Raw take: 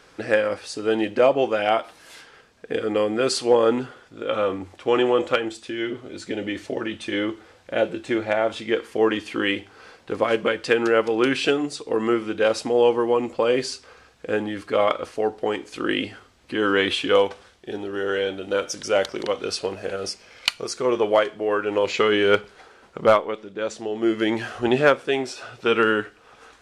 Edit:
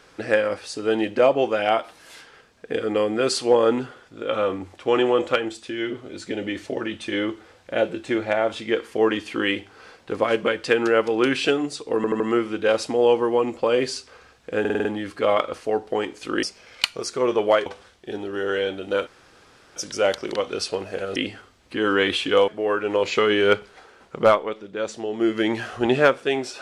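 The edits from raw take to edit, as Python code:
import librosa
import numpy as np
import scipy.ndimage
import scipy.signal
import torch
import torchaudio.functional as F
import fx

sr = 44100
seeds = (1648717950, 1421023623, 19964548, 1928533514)

y = fx.edit(x, sr, fx.stutter(start_s=11.96, slice_s=0.08, count=4),
    fx.stutter(start_s=14.36, slice_s=0.05, count=6),
    fx.swap(start_s=15.94, length_s=1.32, other_s=20.07, other_length_s=1.23),
    fx.insert_room_tone(at_s=18.67, length_s=0.69), tone=tone)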